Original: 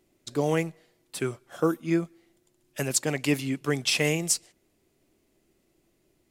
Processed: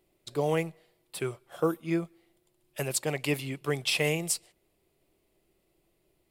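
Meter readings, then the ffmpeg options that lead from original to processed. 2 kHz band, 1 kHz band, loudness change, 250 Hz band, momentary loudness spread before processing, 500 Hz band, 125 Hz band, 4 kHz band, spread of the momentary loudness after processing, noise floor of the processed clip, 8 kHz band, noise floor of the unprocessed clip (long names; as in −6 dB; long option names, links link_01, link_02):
−2.5 dB, −1.5 dB, −3.0 dB, −5.0 dB, 10 LU, −1.5 dB, −3.0 dB, −3.0 dB, 10 LU, −73 dBFS, −5.0 dB, −70 dBFS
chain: -af "equalizer=frequency=100:width_type=o:width=0.67:gain=-4,equalizer=frequency=250:width_type=o:width=0.67:gain=-10,equalizer=frequency=1600:width_type=o:width=0.67:gain=-5,equalizer=frequency=6300:width_type=o:width=0.67:gain=-9"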